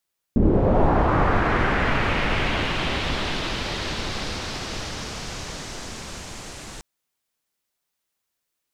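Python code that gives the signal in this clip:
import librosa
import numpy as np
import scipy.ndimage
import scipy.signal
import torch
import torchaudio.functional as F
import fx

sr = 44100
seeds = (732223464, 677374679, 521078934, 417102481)

y = fx.riser_noise(sr, seeds[0], length_s=6.45, colour='pink', kind='lowpass', start_hz=250.0, end_hz=7700.0, q=1.6, swell_db=-23.5, law='linear')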